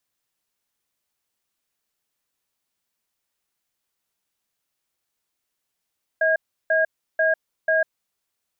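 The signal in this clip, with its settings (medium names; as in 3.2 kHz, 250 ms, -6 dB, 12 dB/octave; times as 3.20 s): cadence 639 Hz, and 1.63 kHz, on 0.15 s, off 0.34 s, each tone -19 dBFS 1.81 s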